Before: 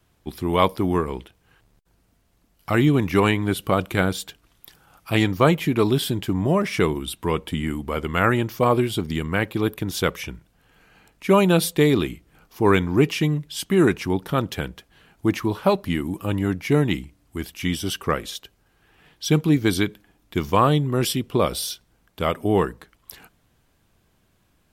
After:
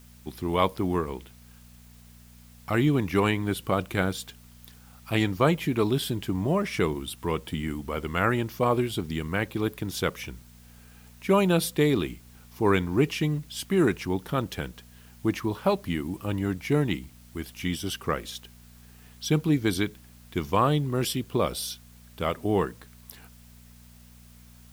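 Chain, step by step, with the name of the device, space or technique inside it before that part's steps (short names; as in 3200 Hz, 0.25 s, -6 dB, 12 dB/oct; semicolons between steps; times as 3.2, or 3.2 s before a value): video cassette with head-switching buzz (buzz 60 Hz, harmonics 4, -47 dBFS -4 dB/oct; white noise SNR 30 dB); gain -5 dB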